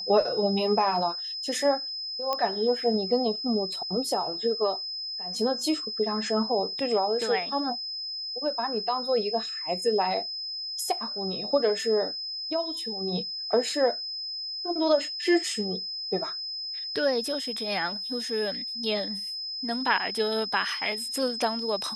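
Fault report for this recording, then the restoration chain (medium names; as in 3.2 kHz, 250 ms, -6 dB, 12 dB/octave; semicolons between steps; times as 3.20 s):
whine 5.1 kHz -32 dBFS
2.33 s: pop -14 dBFS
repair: de-click; band-stop 5.1 kHz, Q 30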